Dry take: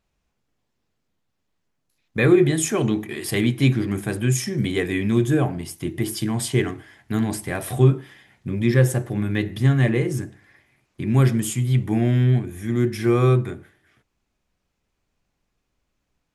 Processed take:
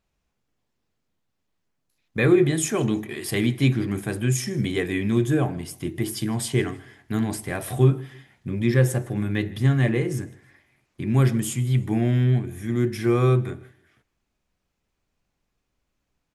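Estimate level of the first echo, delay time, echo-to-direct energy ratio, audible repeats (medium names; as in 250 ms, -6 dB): -23.5 dB, 157 ms, -23.0 dB, 2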